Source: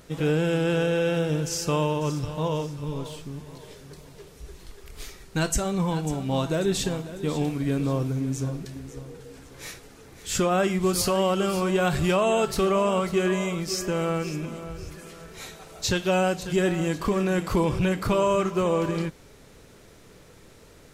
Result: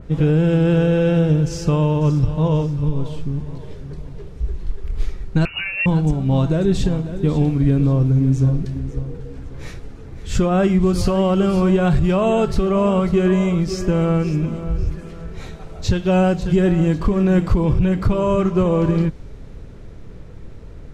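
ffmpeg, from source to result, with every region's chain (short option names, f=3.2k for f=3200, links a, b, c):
-filter_complex "[0:a]asettb=1/sr,asplit=3[a][b][c];[a]atrim=end=5.454[d];[b]atrim=start=5.45:end=5.86,asetpts=PTS-STARTPTS,afade=t=in:d=0.004:c=qsin,afade=t=out:st=0.406:d=0.004:c=qsin,asplit=2[e][f];[f]adelay=12,volume=-7dB[g];[e][g]amix=inputs=2:normalize=0,atrim=end_sample=18081,lowpass=f=2.5k:t=q:w=0.5098,lowpass=f=2.5k:t=q:w=0.6013,lowpass=f=2.5k:t=q:w=0.9,lowpass=f=2.5k:t=q:w=2.563,afreqshift=-2900[h];[c]atrim=start=5.856[i];[d][h]acrossfade=d=0.004:c1=hsin:c2=qsin[j];[j][i]acrossfade=d=0.004:c1=qsin:c2=hsin,aemphasis=mode=reproduction:type=riaa,alimiter=limit=-10.5dB:level=0:latency=1:release=267,adynamicequalizer=threshold=0.00562:dfrequency=3100:dqfactor=0.7:tfrequency=3100:tqfactor=0.7:attack=5:release=100:ratio=0.375:range=2:mode=boostabove:tftype=highshelf,volume=3dB"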